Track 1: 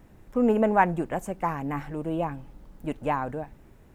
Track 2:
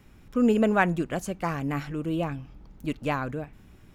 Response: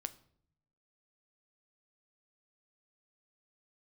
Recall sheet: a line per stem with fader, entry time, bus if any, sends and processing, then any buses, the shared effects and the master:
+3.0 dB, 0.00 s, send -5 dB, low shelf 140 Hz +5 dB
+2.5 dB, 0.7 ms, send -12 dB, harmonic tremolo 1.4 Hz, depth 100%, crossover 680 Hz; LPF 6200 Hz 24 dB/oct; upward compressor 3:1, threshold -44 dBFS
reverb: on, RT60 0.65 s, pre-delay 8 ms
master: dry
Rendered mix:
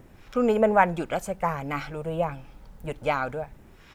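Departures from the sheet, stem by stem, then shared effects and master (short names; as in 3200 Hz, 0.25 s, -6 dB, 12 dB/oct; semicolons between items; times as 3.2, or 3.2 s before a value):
stem 1: send off; master: extra low shelf 370 Hz -8.5 dB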